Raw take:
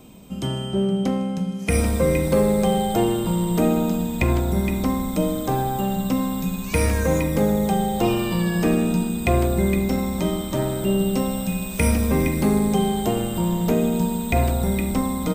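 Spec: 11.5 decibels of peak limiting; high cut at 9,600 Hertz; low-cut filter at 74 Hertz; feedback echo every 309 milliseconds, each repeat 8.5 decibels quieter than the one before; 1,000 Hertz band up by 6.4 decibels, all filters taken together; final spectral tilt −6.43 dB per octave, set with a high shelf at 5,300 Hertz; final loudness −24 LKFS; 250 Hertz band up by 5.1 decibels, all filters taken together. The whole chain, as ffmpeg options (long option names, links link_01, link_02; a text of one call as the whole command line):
ffmpeg -i in.wav -af "highpass=74,lowpass=9600,equalizer=frequency=250:width_type=o:gain=6.5,equalizer=frequency=1000:width_type=o:gain=8.5,highshelf=frequency=5300:gain=-8,alimiter=limit=-14.5dB:level=0:latency=1,aecho=1:1:309|618|927|1236:0.376|0.143|0.0543|0.0206,volume=-2.5dB" out.wav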